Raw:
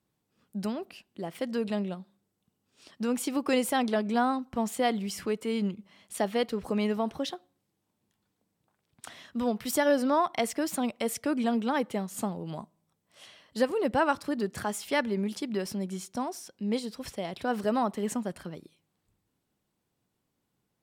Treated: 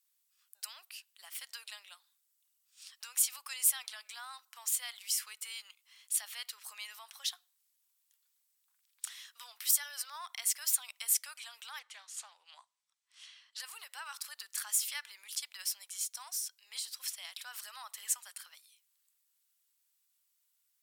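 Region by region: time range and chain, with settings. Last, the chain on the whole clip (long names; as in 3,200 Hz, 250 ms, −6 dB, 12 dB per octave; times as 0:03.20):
0:11.79–0:13.60: high-frequency loss of the air 90 metres + highs frequency-modulated by the lows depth 0.14 ms
whole clip: brickwall limiter −23.5 dBFS; high-pass filter 1,000 Hz 24 dB per octave; first difference; level +7.5 dB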